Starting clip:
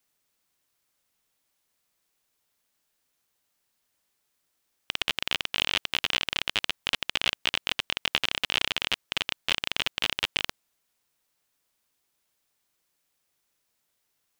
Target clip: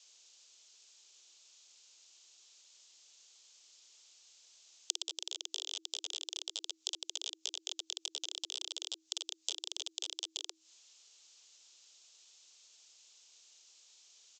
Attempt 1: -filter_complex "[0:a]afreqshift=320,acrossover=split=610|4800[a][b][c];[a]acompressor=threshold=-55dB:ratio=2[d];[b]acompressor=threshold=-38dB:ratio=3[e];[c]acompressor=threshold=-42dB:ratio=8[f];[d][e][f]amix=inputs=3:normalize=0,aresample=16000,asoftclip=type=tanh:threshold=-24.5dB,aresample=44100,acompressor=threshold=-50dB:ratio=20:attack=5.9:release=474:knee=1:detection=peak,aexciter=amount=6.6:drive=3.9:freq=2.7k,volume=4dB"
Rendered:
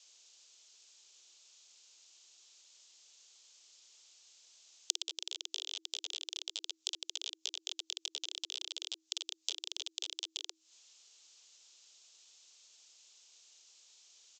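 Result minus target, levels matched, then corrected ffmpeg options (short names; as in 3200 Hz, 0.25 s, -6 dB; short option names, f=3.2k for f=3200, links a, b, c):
soft clip: distortion -7 dB
-filter_complex "[0:a]afreqshift=320,acrossover=split=610|4800[a][b][c];[a]acompressor=threshold=-55dB:ratio=2[d];[b]acompressor=threshold=-38dB:ratio=3[e];[c]acompressor=threshold=-42dB:ratio=8[f];[d][e][f]amix=inputs=3:normalize=0,aresample=16000,asoftclip=type=tanh:threshold=-31.5dB,aresample=44100,acompressor=threshold=-50dB:ratio=20:attack=5.9:release=474:knee=1:detection=peak,aexciter=amount=6.6:drive=3.9:freq=2.7k,volume=4dB"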